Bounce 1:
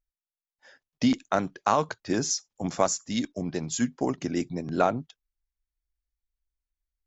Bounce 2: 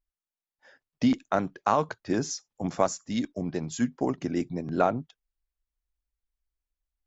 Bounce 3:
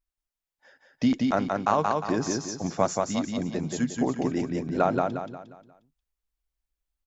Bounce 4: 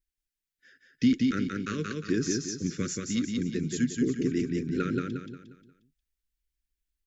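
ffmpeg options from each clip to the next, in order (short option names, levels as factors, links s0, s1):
-af "highshelf=f=3200:g=-8.5"
-af "aecho=1:1:178|356|534|712|890:0.708|0.276|0.108|0.042|0.0164"
-af "asuperstop=centerf=790:order=8:qfactor=0.77"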